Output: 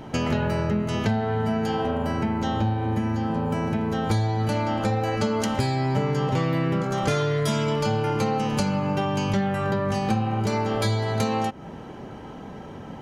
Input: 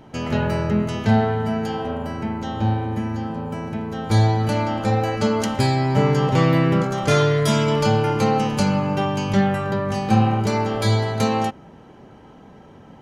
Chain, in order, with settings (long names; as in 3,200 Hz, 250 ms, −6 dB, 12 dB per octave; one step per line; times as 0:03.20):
downward compressor, threshold −28 dBFS, peak gain reduction 15.5 dB
level +6.5 dB